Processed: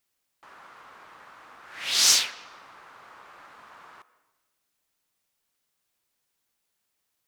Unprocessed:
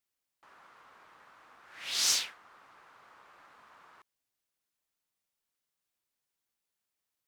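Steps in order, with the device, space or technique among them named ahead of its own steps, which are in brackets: filtered reverb send (on a send: high-pass 220 Hz + low-pass 3.1 kHz 12 dB/octave + reverberation RT60 1.2 s, pre-delay 111 ms, DRR 16.5 dB); on the sum: trim +8.5 dB

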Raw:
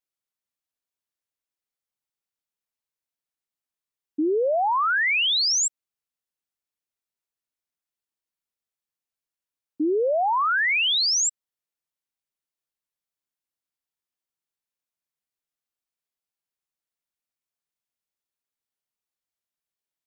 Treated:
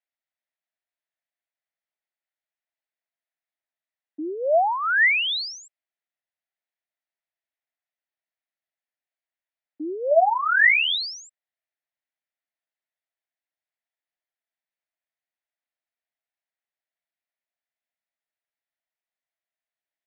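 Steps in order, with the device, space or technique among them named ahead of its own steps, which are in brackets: 10.10–10.96 s: doubling 12 ms -3.5 dB; phone earpiece (cabinet simulation 420–3700 Hz, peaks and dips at 440 Hz -9 dB, 660 Hz +8 dB, 1.1 kHz -7 dB, 1.9 kHz +7 dB, 3 kHz -3 dB)

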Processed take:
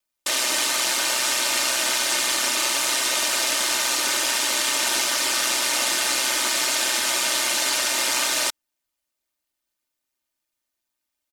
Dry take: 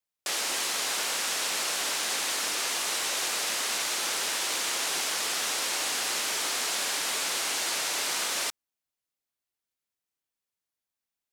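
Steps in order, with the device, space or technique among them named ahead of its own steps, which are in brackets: ring-modulated robot voice (ring modulator 63 Hz; comb 3.3 ms, depth 79%); trim +8 dB

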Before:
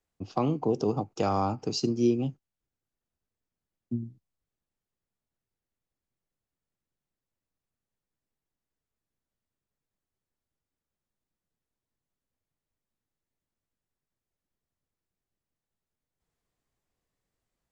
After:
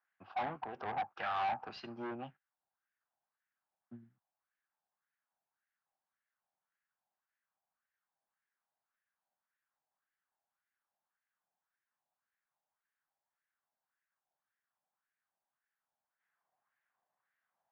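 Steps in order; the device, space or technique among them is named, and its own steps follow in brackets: wah-wah guitar rig (wah-wah 1.8 Hz 760–1800 Hz, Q 2.7; valve stage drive 43 dB, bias 0.3; cabinet simulation 85–3700 Hz, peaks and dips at 300 Hz -9 dB, 440 Hz -9 dB, 780 Hz +4 dB, 1.6 kHz +6 dB); trim +8.5 dB

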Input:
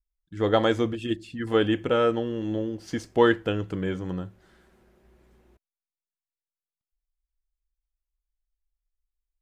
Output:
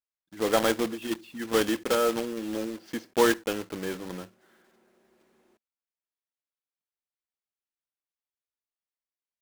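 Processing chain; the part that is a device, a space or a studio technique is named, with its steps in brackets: early digital voice recorder (band-pass 290–3700 Hz; block-companded coder 3-bit); peaking EQ 220 Hz +5 dB 0.34 oct; trim -2 dB

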